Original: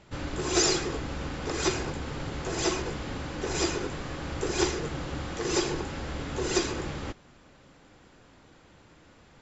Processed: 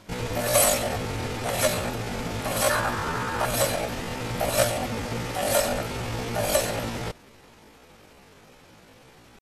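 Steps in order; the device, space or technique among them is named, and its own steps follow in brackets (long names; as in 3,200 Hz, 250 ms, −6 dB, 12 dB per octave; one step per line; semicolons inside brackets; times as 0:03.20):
0:02.72–0:03.48: flat-topped bell 760 Hz +10.5 dB 1.1 octaves
chipmunk voice (pitch shifter +8.5 semitones)
level +4.5 dB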